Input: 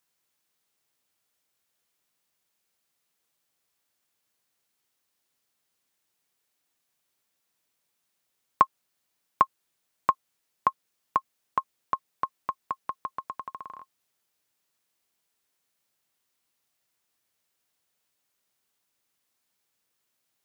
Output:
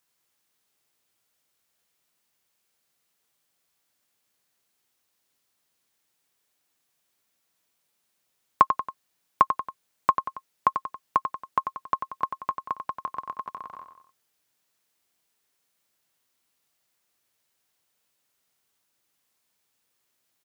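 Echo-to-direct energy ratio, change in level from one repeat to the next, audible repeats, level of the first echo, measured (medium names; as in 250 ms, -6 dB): -7.0 dB, -6.0 dB, 3, -8.0 dB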